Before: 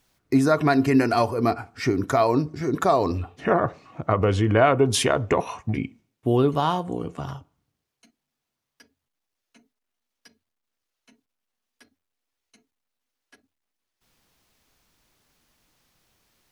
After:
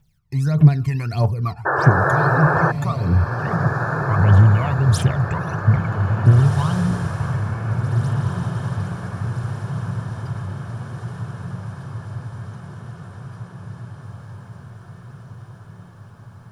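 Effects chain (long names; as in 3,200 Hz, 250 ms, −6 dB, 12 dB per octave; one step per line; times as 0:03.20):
phase shifter 1.6 Hz, delay 1.2 ms, feedback 77%
low shelf with overshoot 210 Hz +8.5 dB, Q 3
sound drawn into the spectrogram noise, 0:01.65–0:02.72, 320–1,800 Hz −10 dBFS
on a send: feedback delay with all-pass diffusion 1,784 ms, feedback 61%, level −6 dB
on the sum: level −9 dB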